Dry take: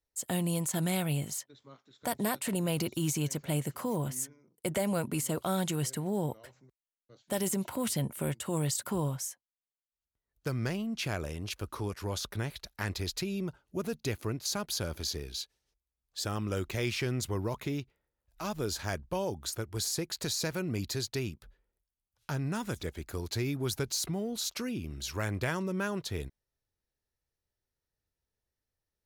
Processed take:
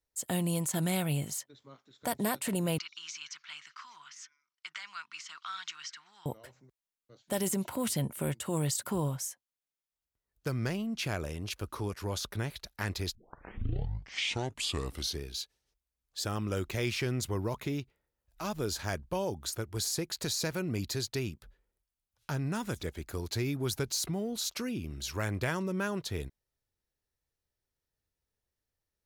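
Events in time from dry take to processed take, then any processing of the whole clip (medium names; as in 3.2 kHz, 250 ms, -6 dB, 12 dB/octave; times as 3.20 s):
2.78–6.26 s: elliptic band-pass 1.2–5.7 kHz
13.15 s: tape start 2.11 s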